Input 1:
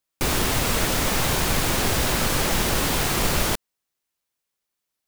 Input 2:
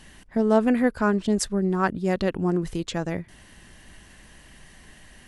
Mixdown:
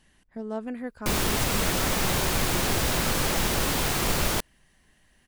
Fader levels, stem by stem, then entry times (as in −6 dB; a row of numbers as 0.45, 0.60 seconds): −3.0, −13.5 decibels; 0.85, 0.00 seconds